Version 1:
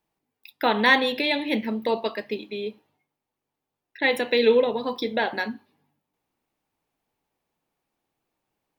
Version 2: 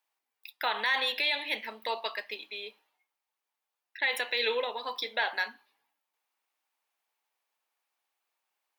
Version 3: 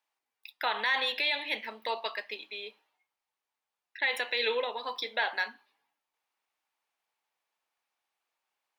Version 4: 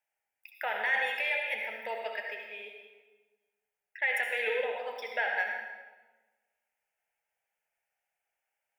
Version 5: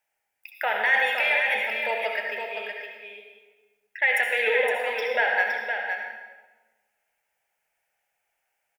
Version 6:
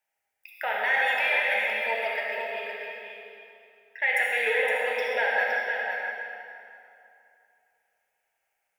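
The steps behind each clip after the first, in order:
high-pass filter 1,000 Hz 12 dB per octave; brickwall limiter −18 dBFS, peak gain reduction 10.5 dB
high-shelf EQ 9,800 Hz −9.5 dB
phaser with its sweep stopped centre 1,100 Hz, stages 6; convolution reverb RT60 1.3 s, pre-delay 61 ms, DRR 2 dB
single-tap delay 514 ms −6.5 dB; level +7.5 dB
dense smooth reverb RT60 2.7 s, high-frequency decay 0.75×, DRR 0 dB; level −4.5 dB

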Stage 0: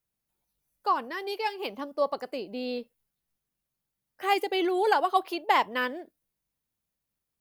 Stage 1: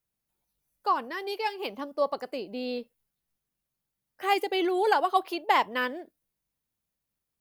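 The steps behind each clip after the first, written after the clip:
no processing that can be heard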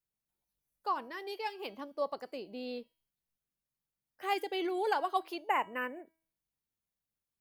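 gain on a spectral selection 0:05.49–0:06.07, 3,000–6,700 Hz −27 dB
hum removal 323.5 Hz, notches 33
level −7.5 dB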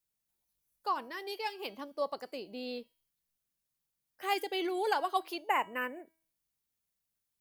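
high-shelf EQ 3,400 Hz +6.5 dB

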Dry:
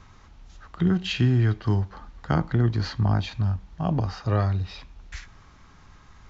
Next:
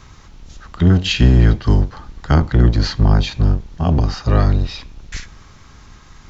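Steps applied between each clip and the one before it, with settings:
sub-octave generator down 1 octave, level +3 dB
high-shelf EQ 3,200 Hz +9 dB
level +5.5 dB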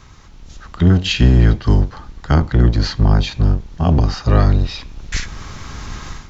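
automatic gain control gain up to 16 dB
level −1 dB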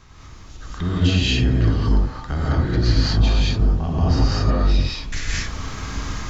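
brickwall limiter −12.5 dBFS, peak gain reduction 10.5 dB
reverb whose tail is shaped and stops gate 250 ms rising, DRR −6.5 dB
level −5.5 dB

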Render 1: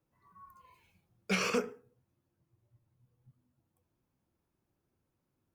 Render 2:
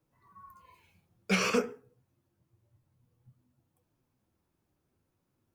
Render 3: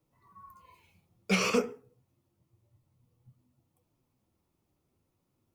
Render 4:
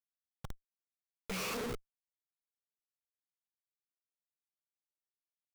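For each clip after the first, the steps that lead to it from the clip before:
flanger 0.52 Hz, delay 6.3 ms, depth 7.2 ms, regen −46%; level +7 dB
parametric band 1,600 Hz −9.5 dB 0.25 octaves; level +1 dB
comparator with hysteresis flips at −44.5 dBFS; level +1 dB

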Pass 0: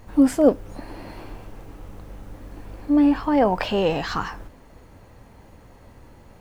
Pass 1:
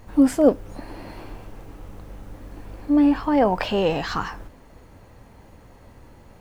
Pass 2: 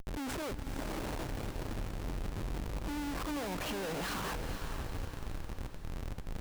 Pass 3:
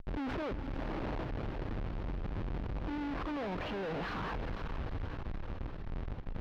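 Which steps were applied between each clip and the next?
no processing that can be heard
downward compressor 3 to 1, threshold −28 dBFS, peak gain reduction 13.5 dB; comparator with hysteresis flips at −42 dBFS; feedback delay with all-pass diffusion 467 ms, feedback 48%, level −7.5 dB; level −4.5 dB
tube saturation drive 43 dB, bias 0.3; high-frequency loss of the air 300 metres; level +8.5 dB

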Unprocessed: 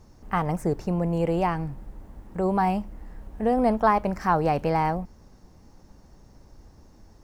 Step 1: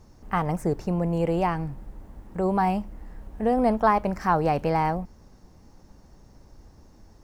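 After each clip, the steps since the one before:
no processing that can be heard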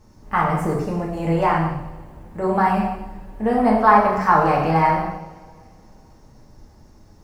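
coupled-rooms reverb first 0.98 s, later 2.8 s, DRR −3.5 dB
dynamic equaliser 1,400 Hz, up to +7 dB, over −34 dBFS, Q 0.85
level −1.5 dB

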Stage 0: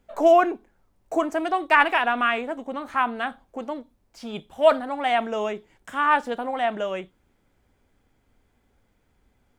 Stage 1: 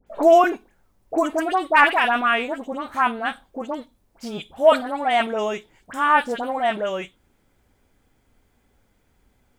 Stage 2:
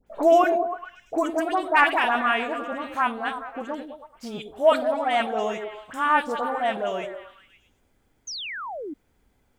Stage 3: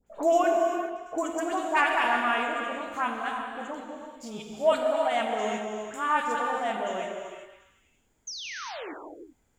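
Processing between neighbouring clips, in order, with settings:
high-shelf EQ 6,000 Hz +5.5 dB; all-pass dispersion highs, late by 67 ms, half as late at 1,600 Hz; level +2.5 dB
echo through a band-pass that steps 105 ms, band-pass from 350 Hz, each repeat 0.7 octaves, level −4.5 dB; sound drawn into the spectrogram fall, 0:08.27–0:08.94, 270–6,600 Hz −30 dBFS; level −3.5 dB
parametric band 7,100 Hz +14 dB 0.25 octaves; reverb whose tail is shaped and stops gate 420 ms flat, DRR 2 dB; level −6 dB

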